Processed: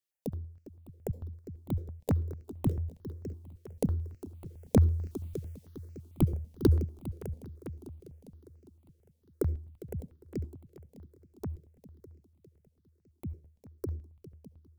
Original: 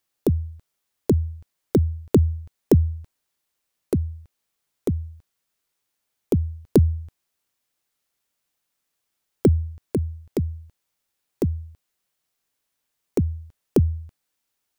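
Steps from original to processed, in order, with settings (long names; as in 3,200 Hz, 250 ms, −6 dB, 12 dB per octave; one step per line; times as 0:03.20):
source passing by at 0:05.28, 9 m/s, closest 3 metres
in parallel at −2 dB: downward compressor, threshold −40 dBFS, peak gain reduction 15.5 dB
on the sum: echo machine with several playback heads 202 ms, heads second and third, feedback 49%, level −15.5 dB
on a send at −21 dB: convolution reverb RT60 0.40 s, pre-delay 60 ms
on the sum: step-sequenced phaser 9 Hz 240–3,500 Hz
level +7.5 dB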